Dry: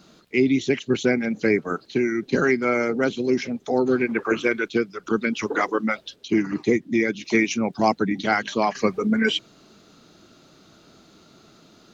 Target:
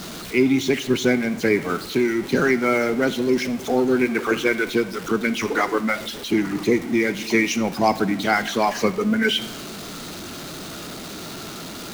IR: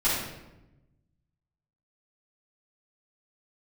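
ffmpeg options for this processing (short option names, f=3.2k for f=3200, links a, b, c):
-filter_complex "[0:a]aeval=exprs='val(0)+0.5*0.0316*sgn(val(0))':c=same,asplit=2[a][b];[b]tiltshelf=f=970:g=-3.5[c];[1:a]atrim=start_sample=2205[d];[c][d]afir=irnorm=-1:irlink=0,volume=-24.5dB[e];[a][e]amix=inputs=2:normalize=0"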